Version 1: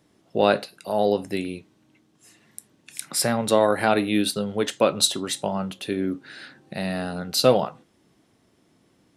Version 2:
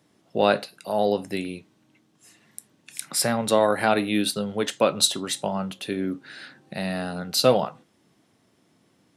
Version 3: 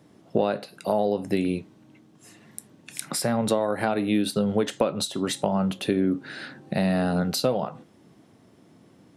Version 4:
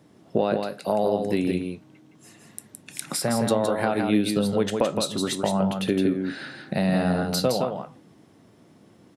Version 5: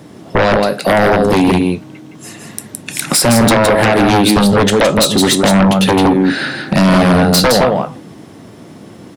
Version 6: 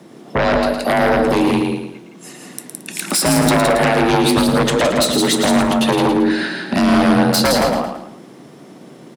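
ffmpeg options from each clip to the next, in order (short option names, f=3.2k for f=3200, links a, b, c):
-af "highpass=97,equalizer=f=360:w=1.5:g=-2.5"
-af "acompressor=threshold=-27dB:ratio=16,tiltshelf=f=1.1k:g=4.5,volume=5.5dB"
-af "aecho=1:1:165:0.562"
-af "aeval=exprs='0.422*sin(PI/2*4.47*val(0)/0.422)':c=same,volume=1.5dB"
-filter_complex "[0:a]afreqshift=37,asplit=2[a][b];[b]aecho=0:1:111|222|333|444:0.447|0.165|0.0612|0.0226[c];[a][c]amix=inputs=2:normalize=0,volume=-5dB"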